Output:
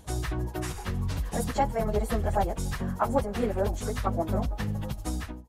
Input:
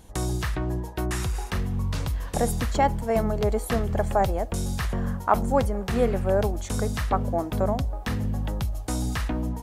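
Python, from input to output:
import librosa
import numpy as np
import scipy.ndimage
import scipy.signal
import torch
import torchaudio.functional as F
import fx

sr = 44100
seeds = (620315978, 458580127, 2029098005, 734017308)

y = fx.fade_out_tail(x, sr, length_s=0.75)
y = fx.stretch_vocoder_free(y, sr, factor=0.57)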